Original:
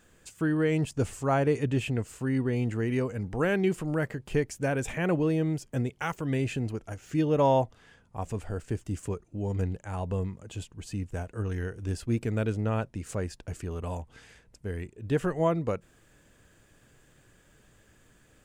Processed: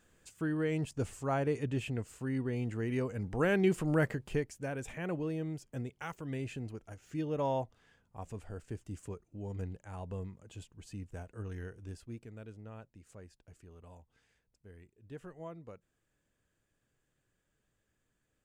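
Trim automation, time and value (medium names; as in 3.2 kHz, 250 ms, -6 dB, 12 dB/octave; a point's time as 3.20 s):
2.69 s -7 dB
4.08 s +0.5 dB
4.54 s -10 dB
11.71 s -10 dB
12.31 s -20 dB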